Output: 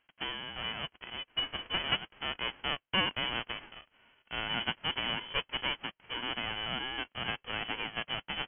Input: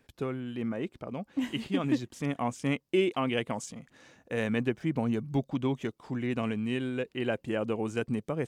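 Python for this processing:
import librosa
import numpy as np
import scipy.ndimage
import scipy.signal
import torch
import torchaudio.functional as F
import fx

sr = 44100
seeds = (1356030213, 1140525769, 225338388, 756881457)

y = fx.envelope_flatten(x, sr, power=0.1)
y = fx.env_lowpass(y, sr, base_hz=2300.0, full_db=-29.0)
y = fx.freq_invert(y, sr, carrier_hz=3200)
y = y * 10.0 ** (-1.5 / 20.0)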